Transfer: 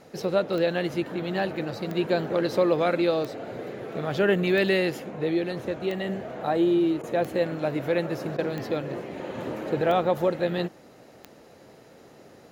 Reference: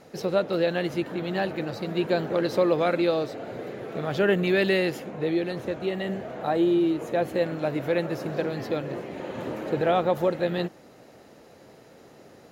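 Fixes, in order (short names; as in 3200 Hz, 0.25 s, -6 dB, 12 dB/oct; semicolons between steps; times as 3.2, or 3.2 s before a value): de-click; interpolate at 7.02/8.37, 13 ms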